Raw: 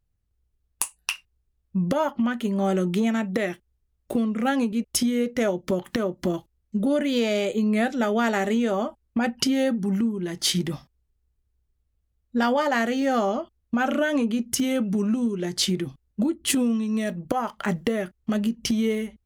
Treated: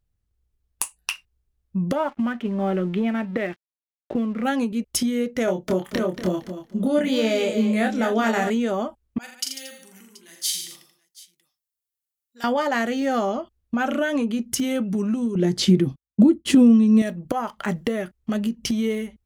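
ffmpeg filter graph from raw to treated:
-filter_complex "[0:a]asettb=1/sr,asplit=3[a][b][c];[a]atrim=end=1.954[d];[b]atrim=start=1.95:end=4.44,asetpts=PTS-STARTPTS,afade=t=in:d=0.004:c=qsin,afade=t=out:st=2.486:d=0.004:c=qsin,lowpass=f=3.1k:w=0.5412,lowpass=f=3.1k:w=1.3066,aeval=exprs='sgn(val(0))*max(abs(val(0))-0.00422,0)':c=same[e];[c]atrim=start=4.436[f];[d][e]acrossfade=d=0.004:c1=hsin:c2=qsin[g];[g][f]acrossfade=d=0.004:c1=qsin:c2=hsin,asettb=1/sr,asplit=3[h][i][j];[h]atrim=end=5.454[k];[i]atrim=start=5.45:end=8.5,asetpts=PTS-STARTPTS,afade=t=in:d=0.004:c=qsin,afade=t=out:st=3.046:d=0.004:c=qsin,asplit=2[l][m];[m]adelay=27,volume=-4dB[n];[l][n]amix=inputs=2:normalize=0,atrim=end_sample=134505,aecho=1:1:231|462|693:0.316|0.0632|0.0126,atrim=end_sample=134505[o];[j]atrim=start=8.496[p];[k][o]acrossfade=d=0.004:c1=hsin:c2=qsin[q];[q][p]acrossfade=d=0.004:c1=qsin:c2=hsin,asettb=1/sr,asplit=3[r][s][t];[r]atrim=end=9.184[u];[s]atrim=start=9.18:end=12.44,asetpts=PTS-STARTPTS,afade=t=in:d=0.004:c=qsin,afade=t=out:st=3.256:d=0.004:c=qsin,aderivative,aecho=1:1:42|83|145|228|730:0.562|0.447|0.316|0.133|0.1,atrim=end_sample=143766[v];[t]atrim=start=12.436[w];[u][v]acrossfade=d=0.004:c1=hsin:c2=qsin[x];[x][w]acrossfade=d=0.004:c1=qsin:c2=hsin,asettb=1/sr,asplit=3[y][z][aa];[y]atrim=end=15.354[ab];[z]atrim=start=15.35:end=17.02,asetpts=PTS-STARTPTS,afade=t=in:d=0.004:c=qsin,afade=t=out:st=1.666:d=0.004:c=qsin,acrossover=split=6800[ac][ad];[ad]acompressor=threshold=-36dB:ratio=4:attack=1:release=60[ae];[ac][ae]amix=inputs=2:normalize=0,equalizer=f=200:w=0.41:g=10,agate=range=-33dB:threshold=-32dB:ratio=3:release=100:detection=peak[af];[aa]atrim=start=17.016[ag];[ab][af]acrossfade=d=0.004:c1=hsin:c2=qsin[ah];[ah][ag]acrossfade=d=0.004:c1=qsin:c2=hsin"

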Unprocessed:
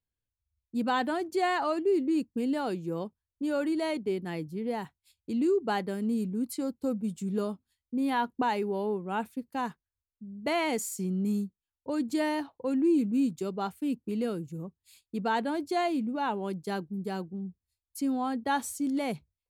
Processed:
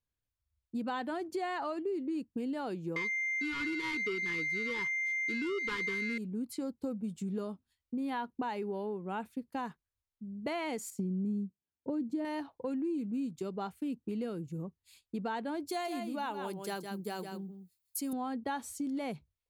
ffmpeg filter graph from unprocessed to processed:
-filter_complex "[0:a]asettb=1/sr,asplit=3[a][b][c];[a]atrim=end=2.964[d];[b]atrim=start=2.96:end=6.18,asetpts=PTS-STARTPTS,afade=t=in:d=0.004:c=qsin,afade=t=out:st=3.216:d=0.004:c=qsin,aeval=exprs='val(0)+0.02*sin(2*PI*2100*n/s)':c=same,asplit=2[e][f];[f]highpass=f=720:p=1,volume=21dB,asoftclip=type=tanh:threshold=-16.5dB[g];[e][g]amix=inputs=2:normalize=0,lowpass=f=4.7k:p=1,volume=-6dB,asuperstop=centerf=670:order=12:qfactor=1.5[h];[c]atrim=start=6.176[i];[d][h]acrossfade=d=0.004:c1=hsin:c2=qsin[j];[j][i]acrossfade=d=0.004:c1=qsin:c2=hsin,asettb=1/sr,asplit=3[k][l][m];[k]atrim=end=10.904[n];[l]atrim=start=10.9:end=12.25,asetpts=PTS-STARTPTS,afade=t=in:d=0.004:c=qsin,afade=t=out:st=1.346:d=0.004:c=qsin,highpass=150,tiltshelf=f=640:g=10[o];[m]atrim=start=12.246[p];[n][o]acrossfade=d=0.004:c1=hsin:c2=qsin[q];[q][p]acrossfade=d=0.004:c1=qsin:c2=hsin,asettb=1/sr,asplit=3[r][s][t];[r]atrim=end=15.684[u];[s]atrim=start=15.68:end=18.13,asetpts=PTS-STARTPTS,afade=t=in:d=0.004:c=qsin,afade=t=out:st=2.446:d=0.004:c=qsin,aemphasis=mode=production:type=bsi,aecho=1:1:161:0.398,atrim=end_sample=108045[v];[t]atrim=start=18.126[w];[u][v]acrossfade=d=0.004:c1=hsin:c2=qsin[x];[x][w]acrossfade=d=0.004:c1=qsin:c2=hsin,highshelf=f=6.3k:g=-6.5,acompressor=threshold=-34dB:ratio=4"

